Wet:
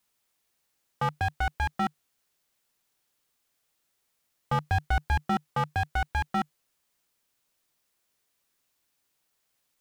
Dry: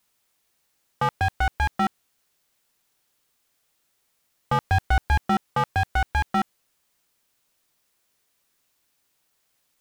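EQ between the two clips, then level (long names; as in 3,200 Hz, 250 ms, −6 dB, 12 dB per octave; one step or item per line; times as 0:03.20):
dynamic equaliser 150 Hz, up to +7 dB, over −47 dBFS, Q 6.9
−5.0 dB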